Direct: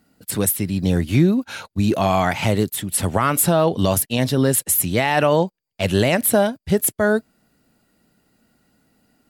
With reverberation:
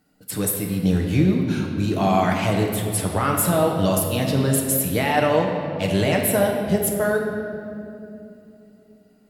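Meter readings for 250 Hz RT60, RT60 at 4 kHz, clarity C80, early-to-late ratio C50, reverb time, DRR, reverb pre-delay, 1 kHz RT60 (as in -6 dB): 4.1 s, 1.7 s, 4.5 dB, 3.0 dB, 2.8 s, 0.0 dB, 7 ms, 2.3 s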